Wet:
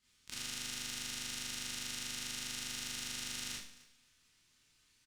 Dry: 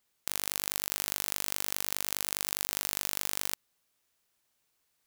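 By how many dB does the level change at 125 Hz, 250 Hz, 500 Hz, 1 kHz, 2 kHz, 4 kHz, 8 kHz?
-3.0 dB, -2.0 dB, -13.0 dB, -11.0 dB, -4.5 dB, -2.5 dB, -6.5 dB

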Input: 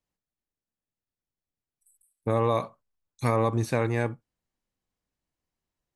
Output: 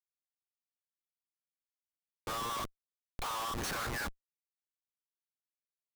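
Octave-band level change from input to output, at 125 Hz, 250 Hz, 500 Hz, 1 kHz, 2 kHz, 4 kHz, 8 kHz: -19.5 dB, -16.0 dB, -19.0 dB, -7.0 dB, -3.5 dB, +4.5 dB, +3.5 dB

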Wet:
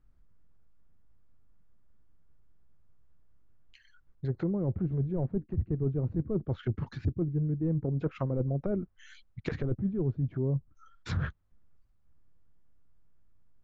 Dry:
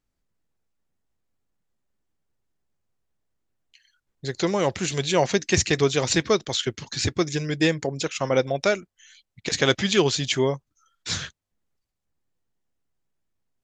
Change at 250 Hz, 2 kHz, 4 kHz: -5.5 dB, -20.5 dB, under -25 dB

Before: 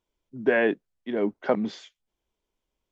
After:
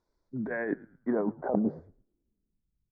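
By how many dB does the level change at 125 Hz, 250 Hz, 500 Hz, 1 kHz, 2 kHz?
+1.5 dB, -1.5 dB, -7.5 dB, -5.0 dB, -10.0 dB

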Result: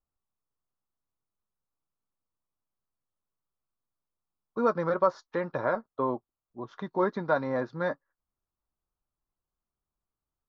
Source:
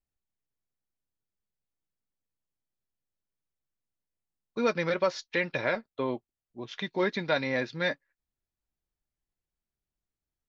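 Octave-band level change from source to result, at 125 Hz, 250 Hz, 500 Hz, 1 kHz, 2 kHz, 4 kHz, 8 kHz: 0.0 dB, +0.5 dB, +1.5 dB, +5.0 dB, -6.0 dB, under -15 dB, no reading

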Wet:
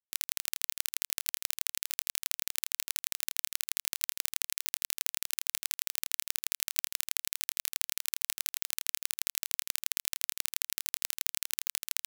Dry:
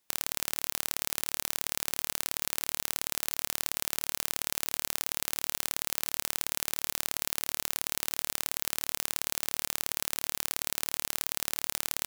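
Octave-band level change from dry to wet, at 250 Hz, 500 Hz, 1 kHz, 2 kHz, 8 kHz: under -20 dB, under -20 dB, -11.5 dB, -3.5 dB, -1.5 dB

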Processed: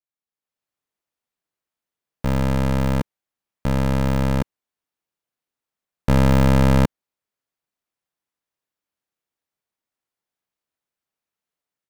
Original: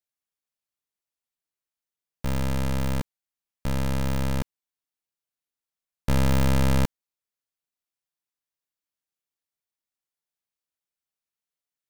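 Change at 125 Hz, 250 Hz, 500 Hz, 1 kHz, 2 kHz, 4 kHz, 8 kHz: +6.5 dB, +7.5 dB, +8.0 dB, +7.0 dB, +5.0 dB, +2.0 dB, 0.0 dB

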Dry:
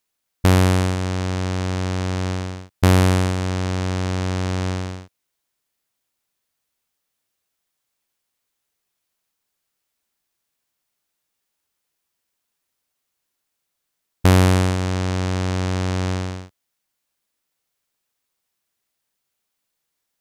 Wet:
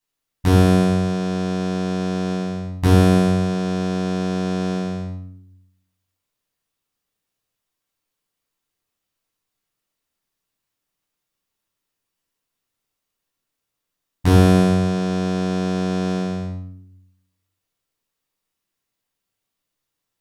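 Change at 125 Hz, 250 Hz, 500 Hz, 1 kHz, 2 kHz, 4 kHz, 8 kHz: -0.5 dB, +5.0 dB, +3.0 dB, 0.0 dB, -3.0 dB, -2.0 dB, -4.5 dB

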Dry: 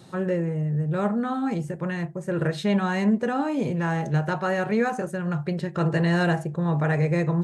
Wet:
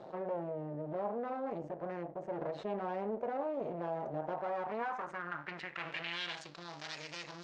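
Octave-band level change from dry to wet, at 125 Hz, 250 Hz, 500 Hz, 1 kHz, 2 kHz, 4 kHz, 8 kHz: -25.0 dB, -20.5 dB, -10.5 dB, -9.5 dB, -13.0 dB, -5.5 dB, under -10 dB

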